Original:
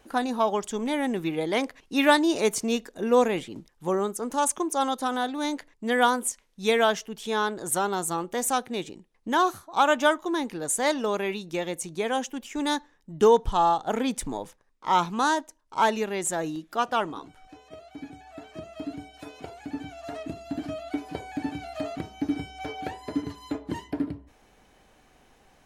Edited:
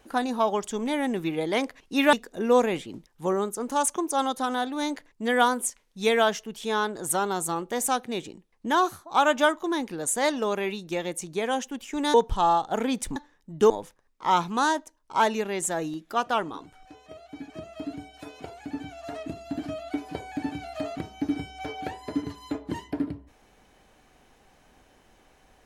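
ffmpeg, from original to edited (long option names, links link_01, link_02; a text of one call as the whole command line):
ffmpeg -i in.wav -filter_complex "[0:a]asplit=6[link_01][link_02][link_03][link_04][link_05][link_06];[link_01]atrim=end=2.132[link_07];[link_02]atrim=start=2.748:end=12.762[link_08];[link_03]atrim=start=13.298:end=14.322[link_09];[link_04]atrim=start=12.758:end=13.302[link_10];[link_05]atrim=start=14.318:end=18.122[link_11];[link_06]atrim=start=18.498[link_12];[link_07][link_08]acrossfade=duration=0.004:curve1=hsin:curve2=hsin[link_13];[link_13][link_09]acrossfade=duration=0.004:curve1=hsin:curve2=hsin[link_14];[link_14][link_10]acrossfade=duration=0.004:curve1=hsin:curve2=hsin[link_15];[link_15][link_11]acrossfade=duration=0.004:curve1=hsin:curve2=hsin[link_16];[link_16][link_12]acrossfade=duration=0.004:curve1=hsin:curve2=hsin" out.wav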